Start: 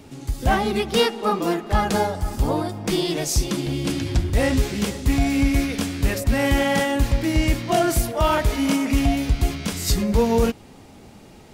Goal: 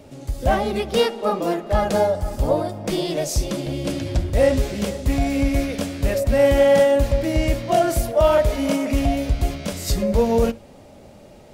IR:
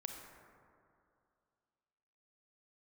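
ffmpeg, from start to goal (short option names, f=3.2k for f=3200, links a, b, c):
-filter_complex "[0:a]equalizer=f=580:t=o:w=0.38:g=14.5,asplit=2[a][b];[1:a]atrim=start_sample=2205,atrim=end_sample=3969,lowshelf=f=240:g=9.5[c];[b][c]afir=irnorm=-1:irlink=0,volume=-8.5dB[d];[a][d]amix=inputs=2:normalize=0,volume=-5dB"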